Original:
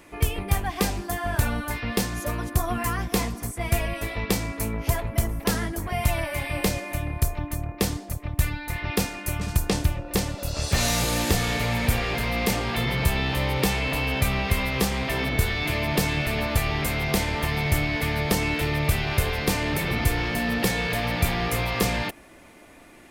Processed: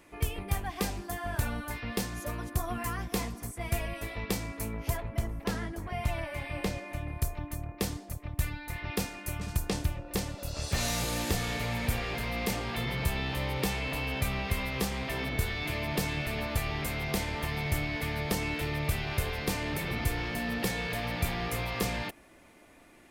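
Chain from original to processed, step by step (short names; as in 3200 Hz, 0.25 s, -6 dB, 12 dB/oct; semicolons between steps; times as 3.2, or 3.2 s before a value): 4.97–7.08 high shelf 6900 Hz -12 dB; gain -7.5 dB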